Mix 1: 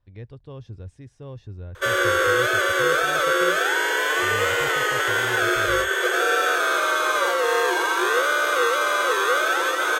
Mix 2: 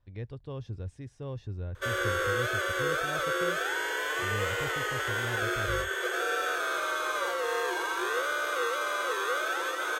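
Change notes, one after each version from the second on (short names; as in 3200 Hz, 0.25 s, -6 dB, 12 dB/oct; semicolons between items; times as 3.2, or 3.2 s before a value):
background -9.5 dB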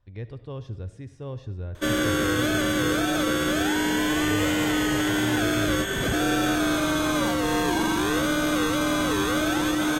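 background: remove rippled Chebyshev high-pass 350 Hz, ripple 9 dB; reverb: on, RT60 0.80 s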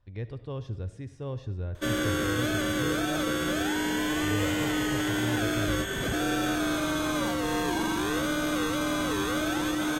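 background -4.5 dB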